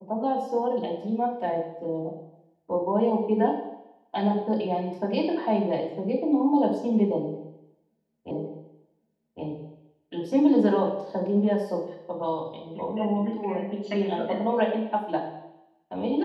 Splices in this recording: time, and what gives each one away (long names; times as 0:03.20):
0:08.31: the same again, the last 1.11 s